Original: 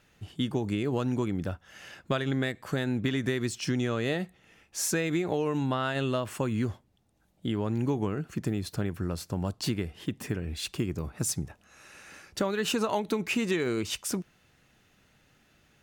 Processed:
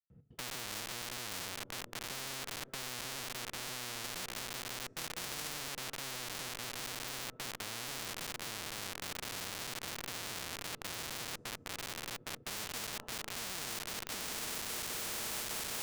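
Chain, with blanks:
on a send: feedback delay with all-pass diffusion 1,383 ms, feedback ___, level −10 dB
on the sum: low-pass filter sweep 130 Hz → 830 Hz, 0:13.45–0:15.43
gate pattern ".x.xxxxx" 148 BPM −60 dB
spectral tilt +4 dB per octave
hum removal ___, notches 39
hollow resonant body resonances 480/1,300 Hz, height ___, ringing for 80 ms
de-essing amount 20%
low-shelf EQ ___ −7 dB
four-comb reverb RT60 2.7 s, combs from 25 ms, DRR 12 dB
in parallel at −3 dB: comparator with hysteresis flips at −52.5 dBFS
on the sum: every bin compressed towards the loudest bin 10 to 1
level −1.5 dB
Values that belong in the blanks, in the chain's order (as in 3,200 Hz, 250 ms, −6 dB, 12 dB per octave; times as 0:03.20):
68%, 143.2 Hz, 12 dB, 61 Hz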